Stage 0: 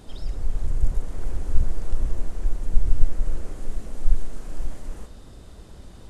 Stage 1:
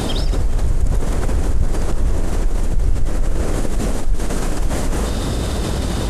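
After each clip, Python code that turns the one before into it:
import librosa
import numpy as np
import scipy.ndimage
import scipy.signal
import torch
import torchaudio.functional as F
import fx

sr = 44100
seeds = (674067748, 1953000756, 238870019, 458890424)

y = fx.highpass(x, sr, hz=42.0, slope=6)
y = fx.env_flatten(y, sr, amount_pct=70)
y = F.gain(torch.from_numpy(y), 5.0).numpy()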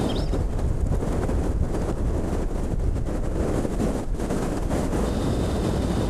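y = fx.highpass(x, sr, hz=110.0, slope=6)
y = fx.tilt_shelf(y, sr, db=5.5, hz=1200.0)
y = F.gain(torch.from_numpy(y), -4.5).numpy()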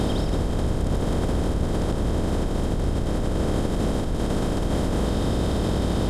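y = fx.bin_compress(x, sr, power=0.4)
y = F.gain(torch.from_numpy(y), -4.0).numpy()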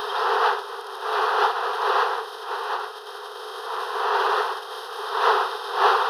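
y = fx.dmg_wind(x, sr, seeds[0], corner_hz=620.0, level_db=-17.0)
y = fx.brickwall_highpass(y, sr, low_hz=390.0)
y = fx.fixed_phaser(y, sr, hz=2200.0, stages=6)
y = F.gain(torch.from_numpy(y), 2.5).numpy()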